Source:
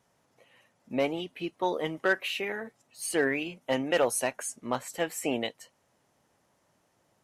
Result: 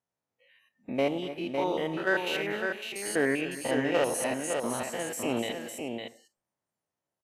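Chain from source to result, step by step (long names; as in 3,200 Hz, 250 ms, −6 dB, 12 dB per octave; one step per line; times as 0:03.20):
spectrum averaged block by block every 100 ms
multi-tap delay 237/258/556 ms −16.5/−16.5/−5.5 dB
on a send at −18 dB: convolution reverb RT60 0.55 s, pre-delay 52 ms
on the sum: noise reduction from a noise print of the clip's start 21 dB
level +2 dB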